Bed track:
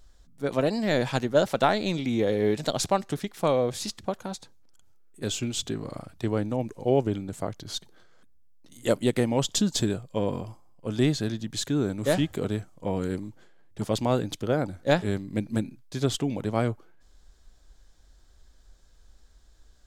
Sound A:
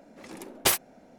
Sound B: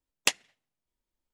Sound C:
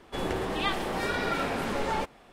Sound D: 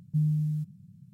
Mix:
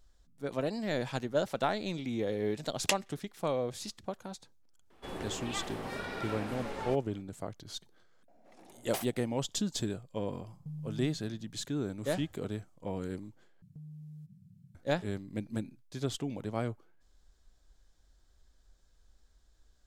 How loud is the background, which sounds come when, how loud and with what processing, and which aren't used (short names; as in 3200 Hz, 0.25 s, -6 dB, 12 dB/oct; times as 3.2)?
bed track -8.5 dB
2.62 add B -5 dB
4.9 add C -10 dB + spectral gate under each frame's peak -60 dB strong
8.28 add A -17 dB + bell 710 Hz +11.5 dB 0.53 oct
10.52 add D -6 dB + compressor, threshold -34 dBFS
13.62 replace with D -6 dB + compressor 10:1, threshold -40 dBFS